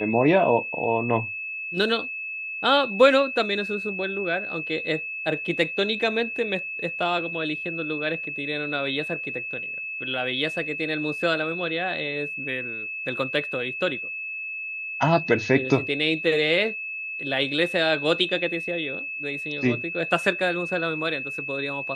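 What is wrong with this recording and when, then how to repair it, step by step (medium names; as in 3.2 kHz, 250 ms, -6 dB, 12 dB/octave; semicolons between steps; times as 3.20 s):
whine 2.6 kHz -30 dBFS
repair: band-stop 2.6 kHz, Q 30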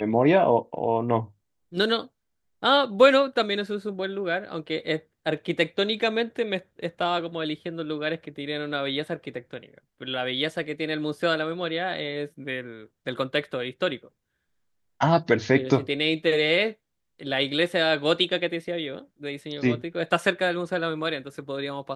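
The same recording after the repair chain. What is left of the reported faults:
nothing left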